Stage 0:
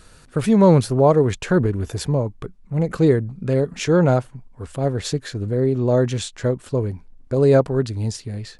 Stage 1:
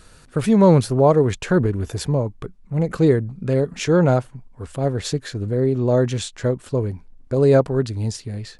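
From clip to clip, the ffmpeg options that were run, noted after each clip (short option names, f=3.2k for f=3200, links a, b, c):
-af anull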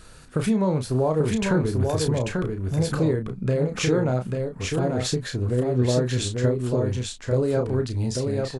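-filter_complex "[0:a]acompressor=threshold=-20dB:ratio=6,asplit=2[a][b];[b]adelay=32,volume=-7dB[c];[a][c]amix=inputs=2:normalize=0,asplit=2[d][e];[e]aecho=0:1:841:0.631[f];[d][f]amix=inputs=2:normalize=0"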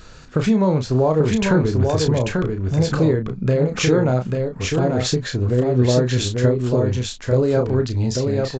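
-af "aresample=16000,aresample=44100,volume=5dB"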